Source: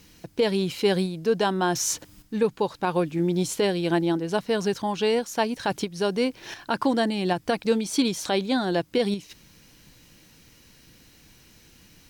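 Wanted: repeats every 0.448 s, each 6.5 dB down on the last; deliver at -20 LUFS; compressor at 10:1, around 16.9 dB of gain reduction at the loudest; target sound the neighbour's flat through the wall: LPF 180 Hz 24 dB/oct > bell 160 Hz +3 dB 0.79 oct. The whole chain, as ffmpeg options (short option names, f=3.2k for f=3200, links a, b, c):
-af "acompressor=threshold=-35dB:ratio=10,lowpass=f=180:w=0.5412,lowpass=f=180:w=1.3066,equalizer=f=160:t=o:w=0.79:g=3,aecho=1:1:448|896|1344|1792|2240|2688:0.473|0.222|0.105|0.0491|0.0231|0.0109,volume=27dB"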